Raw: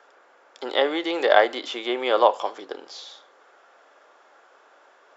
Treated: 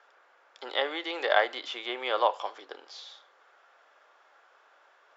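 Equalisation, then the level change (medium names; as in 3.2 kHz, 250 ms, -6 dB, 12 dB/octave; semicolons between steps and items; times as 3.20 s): high-pass 1.1 kHz 6 dB/octave; distance through air 86 m; -2.0 dB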